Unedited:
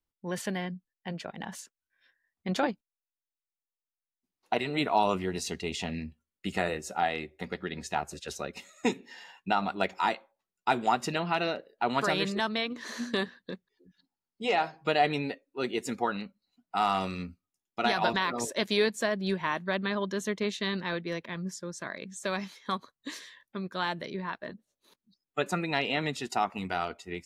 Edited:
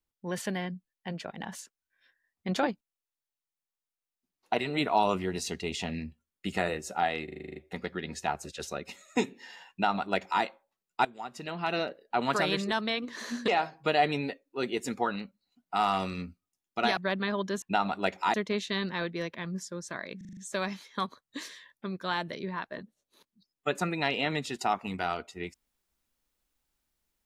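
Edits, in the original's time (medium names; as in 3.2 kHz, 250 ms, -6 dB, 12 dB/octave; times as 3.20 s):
7.24 s: stutter 0.04 s, 9 plays
9.39–10.11 s: copy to 20.25 s
10.73–11.46 s: fade in quadratic, from -17 dB
13.16–14.49 s: delete
17.98–19.60 s: delete
22.08 s: stutter 0.04 s, 6 plays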